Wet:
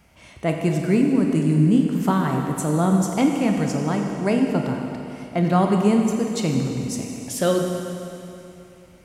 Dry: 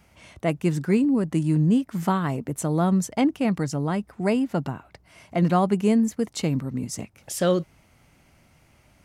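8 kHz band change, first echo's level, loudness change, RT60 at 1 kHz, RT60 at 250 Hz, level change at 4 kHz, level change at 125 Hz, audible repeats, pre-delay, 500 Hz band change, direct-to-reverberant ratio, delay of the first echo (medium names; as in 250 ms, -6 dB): +3.0 dB, no echo, +2.5 dB, 2.9 s, 2.9 s, +3.0 dB, +3.0 dB, no echo, 28 ms, +3.0 dB, 2.0 dB, no echo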